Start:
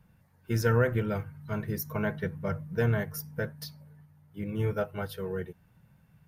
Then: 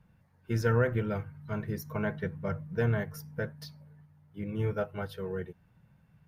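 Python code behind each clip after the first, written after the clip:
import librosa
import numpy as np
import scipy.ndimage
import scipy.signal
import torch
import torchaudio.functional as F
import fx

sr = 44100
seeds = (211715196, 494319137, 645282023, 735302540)

y = fx.high_shelf(x, sr, hz=7400.0, db=-11.0)
y = y * librosa.db_to_amplitude(-1.5)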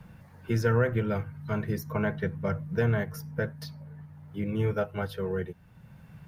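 y = fx.band_squash(x, sr, depth_pct=40)
y = y * librosa.db_to_amplitude(3.5)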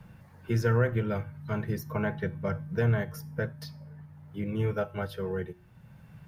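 y = fx.comb_fb(x, sr, f0_hz=120.0, decay_s=0.47, harmonics='odd', damping=0.0, mix_pct=50)
y = y * librosa.db_to_amplitude(4.0)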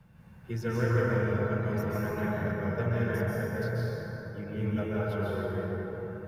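y = fx.rev_plate(x, sr, seeds[0], rt60_s=4.6, hf_ratio=0.4, predelay_ms=120, drr_db=-8.0)
y = y * librosa.db_to_amplitude(-7.5)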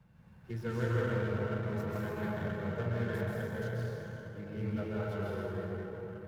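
y = fx.running_max(x, sr, window=5)
y = y * librosa.db_to_amplitude(-5.0)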